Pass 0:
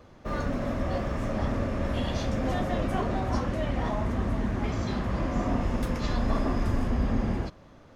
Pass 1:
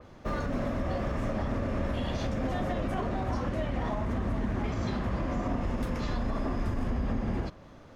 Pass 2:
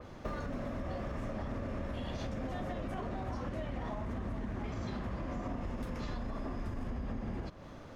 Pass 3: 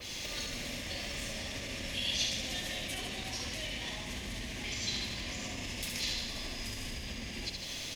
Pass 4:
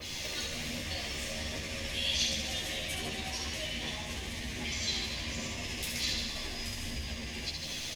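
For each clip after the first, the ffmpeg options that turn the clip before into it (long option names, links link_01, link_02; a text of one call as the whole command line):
ffmpeg -i in.wav -af "alimiter=limit=-23.5dB:level=0:latency=1:release=115,adynamicequalizer=threshold=0.00158:dfrequency=3700:dqfactor=0.7:tfrequency=3700:tqfactor=0.7:attack=5:release=100:ratio=0.375:range=1.5:mode=cutabove:tftype=highshelf,volume=1.5dB" out.wav
ffmpeg -i in.wav -af "acompressor=threshold=-38dB:ratio=5,volume=2dB" out.wav
ffmpeg -i in.wav -filter_complex "[0:a]alimiter=level_in=11dB:limit=-24dB:level=0:latency=1:release=236,volume=-11dB,aexciter=amount=11:drive=8.2:freq=2100,asplit=2[link_01][link_02];[link_02]aecho=0:1:70|150.5|243.1|349.5|472:0.631|0.398|0.251|0.158|0.1[link_03];[link_01][link_03]amix=inputs=2:normalize=0,volume=-2dB" out.wav
ffmpeg -i in.wav -filter_complex "[0:a]aphaser=in_gain=1:out_gain=1:delay=2.8:decay=0.25:speed=1.3:type=triangular,asplit=2[link_01][link_02];[link_02]adelay=13,volume=-3.5dB[link_03];[link_01][link_03]amix=inputs=2:normalize=0" out.wav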